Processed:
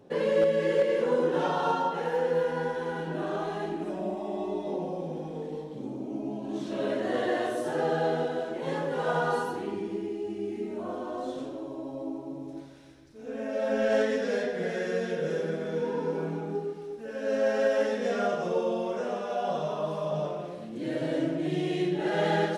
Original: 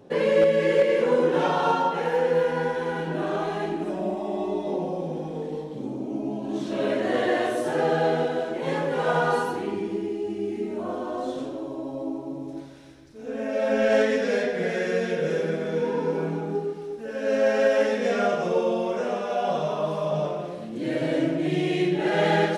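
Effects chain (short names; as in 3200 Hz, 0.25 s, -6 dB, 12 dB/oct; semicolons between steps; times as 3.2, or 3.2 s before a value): dynamic EQ 2300 Hz, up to -6 dB, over -49 dBFS, Q 4; gain -4.5 dB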